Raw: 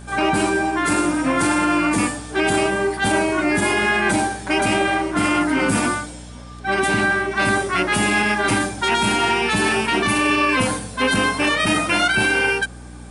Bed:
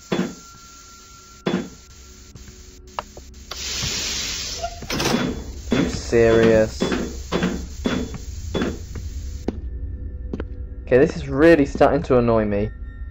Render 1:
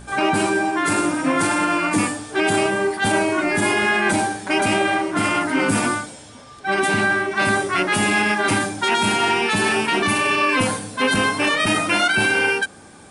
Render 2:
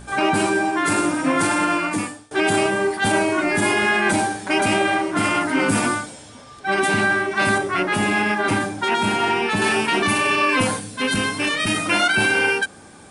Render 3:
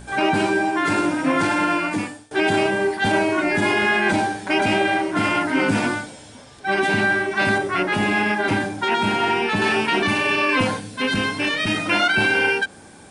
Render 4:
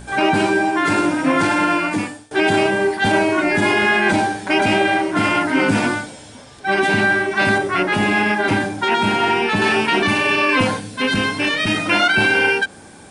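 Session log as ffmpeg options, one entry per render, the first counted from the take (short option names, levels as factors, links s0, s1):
-af "bandreject=f=60:t=h:w=4,bandreject=f=120:t=h:w=4,bandreject=f=180:t=h:w=4,bandreject=f=240:t=h:w=4,bandreject=f=300:t=h:w=4"
-filter_complex "[0:a]asettb=1/sr,asplit=3[s0][s1][s2];[s0]atrim=end=7.584[s3];[s1]atrim=start=7.58:end=9.62,asetpts=PTS-STARTPTS,afade=t=in:d=0.004:c=qsin,afade=t=out:st=2.036:d=0.004:c=qsin,highshelf=f=3000:g=-7.5[s4];[s2]atrim=start=9.616[s5];[s3][s4]acrossfade=d=0.004:c1=hsin:c2=qsin[s6];[s6][s5]acrossfade=d=0.004:c1=qsin:c2=hsin,asettb=1/sr,asplit=3[s7][s8][s9];[s7]atrim=end=10.804[s10];[s8]atrim=start=10.8:end=11.86,asetpts=PTS-STARTPTS,afade=t=in:d=0.004:c=qsin,afade=t=out:st=1.056:d=0.004:c=qsin,equalizer=f=820:t=o:w=2:g=-7[s11];[s9]atrim=start=11.856[s12];[s10][s11]acrossfade=d=0.004:c1=hsin:c2=qsin[s13];[s13][s12]acrossfade=d=0.004:c1=qsin:c2=hsin,asplit=2[s14][s15];[s14]atrim=end=2.31,asetpts=PTS-STARTPTS,afade=t=out:st=1.71:d=0.6:silence=0.0749894[s16];[s15]atrim=start=2.31,asetpts=PTS-STARTPTS,afade=t=in:d=0.004:c=hsin:silence=0.0749894[s17];[s16][s17]concat=n=2:v=0:a=1"
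-filter_complex "[0:a]bandreject=f=1200:w=13,acrossover=split=5900[s0][s1];[s1]acompressor=threshold=0.00447:ratio=4:attack=1:release=60[s2];[s0][s2]amix=inputs=2:normalize=0"
-af "volume=1.41"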